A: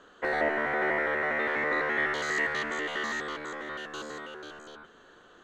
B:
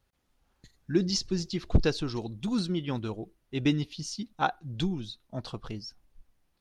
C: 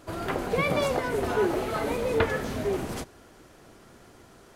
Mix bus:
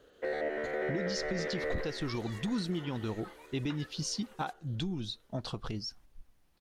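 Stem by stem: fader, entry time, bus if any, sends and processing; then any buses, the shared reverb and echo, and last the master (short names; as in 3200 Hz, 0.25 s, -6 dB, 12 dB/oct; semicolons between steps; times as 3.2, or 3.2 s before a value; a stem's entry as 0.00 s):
1.69 s -8.5 dB -> 2.09 s -21.5 dB, 0.00 s, no send, no echo send, graphic EQ 500/1000/4000 Hz +11/-11/+3 dB
+3.0 dB, 0.00 s, no send, no echo send, compressor, threshold -33 dBFS, peak gain reduction 17 dB
-18.5 dB, 1.50 s, no send, echo send -18.5 dB, steep high-pass 800 Hz; reverb removal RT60 0.9 s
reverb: off
echo: echo 0.614 s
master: limiter -24.5 dBFS, peak gain reduction 5.5 dB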